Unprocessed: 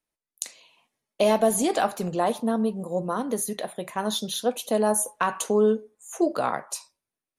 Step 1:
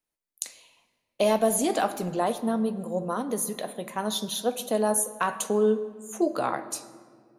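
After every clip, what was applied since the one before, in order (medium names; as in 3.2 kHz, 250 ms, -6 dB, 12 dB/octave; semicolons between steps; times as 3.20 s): treble shelf 12 kHz +5 dB; on a send at -13 dB: reverberation RT60 1.9 s, pre-delay 15 ms; on the sum: trim -2 dB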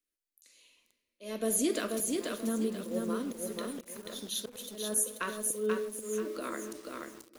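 static phaser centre 330 Hz, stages 4; slow attack 298 ms; bit-crushed delay 485 ms, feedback 35%, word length 8-bit, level -3 dB; trim -2.5 dB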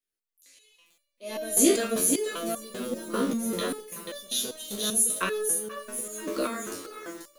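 spectral sustain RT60 0.34 s; level rider gain up to 11.5 dB; resonator arpeggio 5.1 Hz 67–580 Hz; trim +5.5 dB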